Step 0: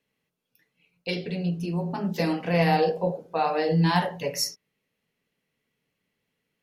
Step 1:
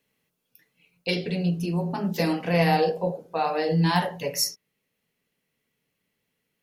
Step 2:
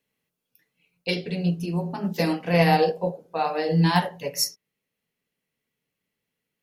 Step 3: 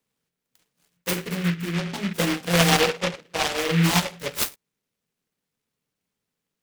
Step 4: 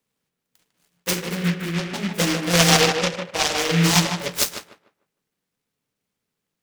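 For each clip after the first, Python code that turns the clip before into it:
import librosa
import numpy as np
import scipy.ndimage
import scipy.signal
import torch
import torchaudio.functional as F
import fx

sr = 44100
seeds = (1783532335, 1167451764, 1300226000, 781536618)

y1 = fx.high_shelf(x, sr, hz=8200.0, db=8.0)
y1 = fx.rider(y1, sr, range_db=3, speed_s=2.0)
y2 = fx.upward_expand(y1, sr, threshold_db=-34.0, expansion=1.5)
y2 = y2 * 10.0 ** (3.0 / 20.0)
y3 = fx.noise_mod_delay(y2, sr, seeds[0], noise_hz=2000.0, depth_ms=0.23)
y4 = fx.echo_tape(y3, sr, ms=152, feedback_pct=28, wet_db=-4.5, lp_hz=2300.0, drive_db=6.0, wow_cents=34)
y4 = fx.dynamic_eq(y4, sr, hz=5900.0, q=1.1, threshold_db=-40.0, ratio=4.0, max_db=7)
y4 = y4 * 10.0 ** (1.0 / 20.0)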